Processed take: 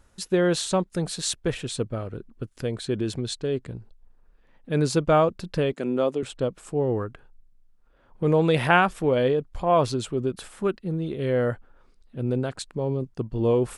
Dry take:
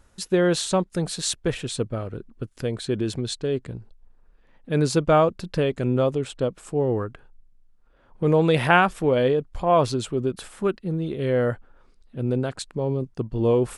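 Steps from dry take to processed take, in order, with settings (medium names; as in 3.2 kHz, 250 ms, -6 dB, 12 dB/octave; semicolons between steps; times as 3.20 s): 5.73–6.23 s: high-pass 190 Hz 24 dB/octave; trim -1.5 dB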